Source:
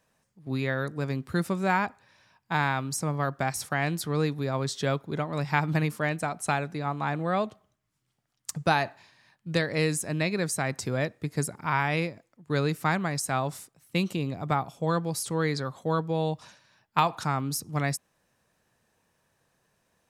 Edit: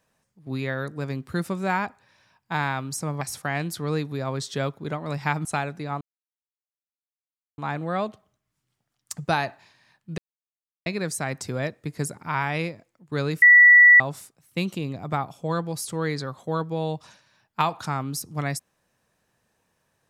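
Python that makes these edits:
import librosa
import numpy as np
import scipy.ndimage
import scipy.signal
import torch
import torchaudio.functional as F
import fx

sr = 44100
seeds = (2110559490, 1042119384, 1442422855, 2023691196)

y = fx.edit(x, sr, fx.cut(start_s=3.21, length_s=0.27),
    fx.cut(start_s=5.72, length_s=0.68),
    fx.insert_silence(at_s=6.96, length_s=1.57),
    fx.silence(start_s=9.56, length_s=0.68),
    fx.bleep(start_s=12.8, length_s=0.58, hz=1950.0, db=-8.5), tone=tone)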